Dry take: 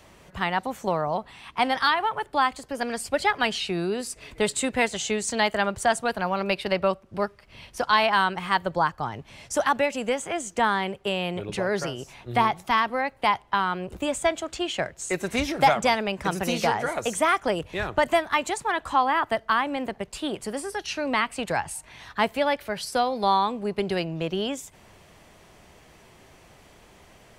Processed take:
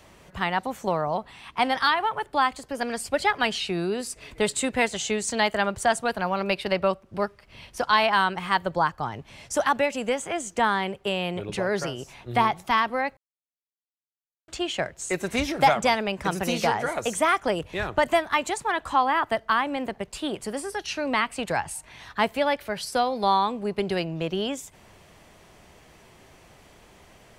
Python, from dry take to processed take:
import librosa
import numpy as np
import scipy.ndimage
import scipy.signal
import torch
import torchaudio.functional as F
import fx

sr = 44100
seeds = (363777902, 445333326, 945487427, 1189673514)

y = fx.edit(x, sr, fx.silence(start_s=13.17, length_s=1.31), tone=tone)